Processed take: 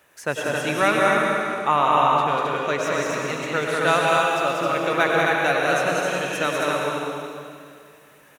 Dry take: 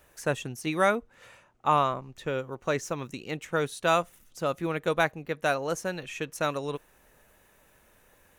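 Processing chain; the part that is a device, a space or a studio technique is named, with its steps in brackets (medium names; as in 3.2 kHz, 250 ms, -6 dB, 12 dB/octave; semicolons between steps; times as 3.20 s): stadium PA (high-pass 130 Hz; peaking EQ 2 kHz +5 dB 2.5 oct; loudspeakers at several distances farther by 66 m -3 dB, 91 m -3 dB; reverberation RT60 2.2 s, pre-delay 92 ms, DRR 0 dB)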